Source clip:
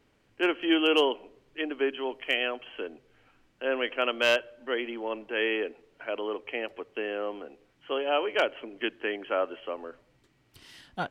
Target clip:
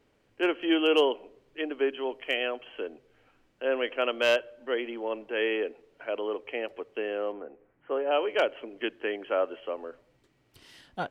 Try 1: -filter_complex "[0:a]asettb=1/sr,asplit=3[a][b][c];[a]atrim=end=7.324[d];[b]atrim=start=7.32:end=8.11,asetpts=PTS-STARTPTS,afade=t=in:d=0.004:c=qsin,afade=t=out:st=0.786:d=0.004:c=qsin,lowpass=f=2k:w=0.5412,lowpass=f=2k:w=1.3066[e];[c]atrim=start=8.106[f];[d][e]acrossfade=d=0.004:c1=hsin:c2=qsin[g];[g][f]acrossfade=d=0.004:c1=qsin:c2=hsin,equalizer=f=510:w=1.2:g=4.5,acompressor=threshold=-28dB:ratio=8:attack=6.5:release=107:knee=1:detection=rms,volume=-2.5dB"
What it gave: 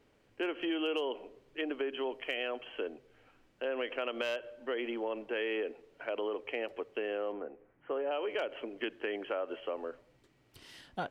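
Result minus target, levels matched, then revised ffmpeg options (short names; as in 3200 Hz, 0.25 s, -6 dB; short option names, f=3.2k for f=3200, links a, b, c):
compressor: peak gain reduction +13.5 dB
-filter_complex "[0:a]asettb=1/sr,asplit=3[a][b][c];[a]atrim=end=7.324[d];[b]atrim=start=7.32:end=8.11,asetpts=PTS-STARTPTS,afade=t=in:d=0.004:c=qsin,afade=t=out:st=0.786:d=0.004:c=qsin,lowpass=f=2k:w=0.5412,lowpass=f=2k:w=1.3066[e];[c]atrim=start=8.106[f];[d][e]acrossfade=d=0.004:c1=hsin:c2=qsin[g];[g][f]acrossfade=d=0.004:c1=qsin:c2=hsin,equalizer=f=510:w=1.2:g=4.5,volume=-2.5dB"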